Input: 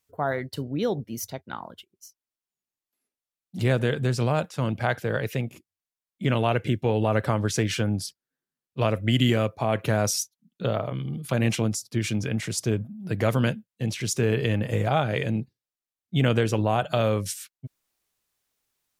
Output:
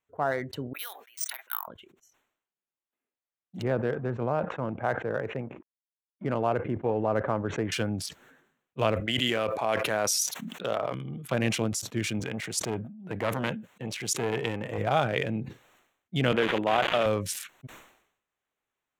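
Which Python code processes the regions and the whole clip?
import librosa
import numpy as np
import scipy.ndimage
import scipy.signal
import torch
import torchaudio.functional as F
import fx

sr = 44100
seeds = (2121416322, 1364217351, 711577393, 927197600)

y = fx.chain(x, sr, fx.highpass(hz=1200.0, slope=24),
    fx.resample_bad(factor=3, down='filtered', up='zero_stuff'), at=(0.73, 1.68))
y = fx.chain(y, sr, fx.law_mismatch(coded='A'),
    fx.lowpass(hz=1300.0, slope=12),
    fx.low_shelf(hz=170.0, db=-4.0), at=(3.62, 7.72))
y = fx.chain(y, sr, fx.highpass(hz=160.0, slope=6),
    fx.low_shelf(hz=360.0, db=-7.5),
    fx.sustainer(db_per_s=23.0), at=(9.0, 10.95))
y = fx.chain(y, sr, fx.low_shelf(hz=94.0, db=-9.5),
    fx.transformer_sat(knee_hz=620.0), at=(12.2, 14.78))
y = fx.chain(y, sr, fx.crossing_spikes(level_db=-19.5),
    fx.highpass(hz=210.0, slope=12),
    fx.resample_bad(factor=6, down='none', up='filtered'), at=(16.32, 17.06))
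y = fx.wiener(y, sr, points=9)
y = fx.low_shelf(y, sr, hz=210.0, db=-9.5)
y = fx.sustainer(y, sr, db_per_s=83.0)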